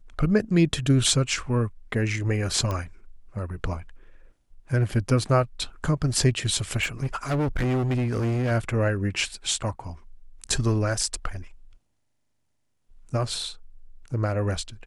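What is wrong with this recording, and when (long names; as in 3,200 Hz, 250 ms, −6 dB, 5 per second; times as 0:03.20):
0:02.71: click −16 dBFS
0:06.82–0:08.52: clipping −21.5 dBFS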